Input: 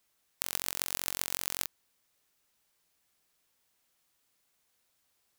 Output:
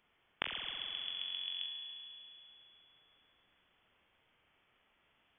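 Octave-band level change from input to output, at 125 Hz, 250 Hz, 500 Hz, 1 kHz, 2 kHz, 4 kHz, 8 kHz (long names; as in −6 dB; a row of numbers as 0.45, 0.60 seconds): below −10 dB, can't be measured, −7.5 dB, −5.5 dB, −3.0 dB, +3.5 dB, below −40 dB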